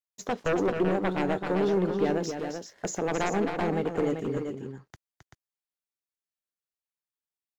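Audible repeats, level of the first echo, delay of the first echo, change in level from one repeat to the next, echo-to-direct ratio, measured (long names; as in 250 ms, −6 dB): 2, −7.5 dB, 266 ms, repeats not evenly spaced, −4.0 dB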